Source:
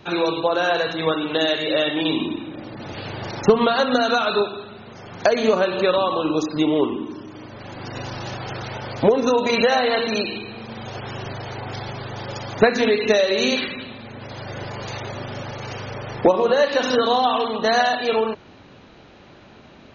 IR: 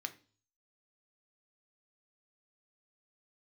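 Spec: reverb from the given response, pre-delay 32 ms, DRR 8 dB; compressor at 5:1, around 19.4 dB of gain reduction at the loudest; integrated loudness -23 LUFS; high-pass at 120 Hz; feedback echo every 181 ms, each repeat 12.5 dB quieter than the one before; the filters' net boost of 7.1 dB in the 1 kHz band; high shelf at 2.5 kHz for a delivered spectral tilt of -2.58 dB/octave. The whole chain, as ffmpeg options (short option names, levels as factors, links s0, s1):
-filter_complex "[0:a]highpass=120,equalizer=f=1000:t=o:g=9,highshelf=f=2500:g=4,acompressor=threshold=0.0316:ratio=5,aecho=1:1:181|362|543:0.237|0.0569|0.0137,asplit=2[s0][s1];[1:a]atrim=start_sample=2205,adelay=32[s2];[s1][s2]afir=irnorm=-1:irlink=0,volume=0.447[s3];[s0][s3]amix=inputs=2:normalize=0,volume=2.66"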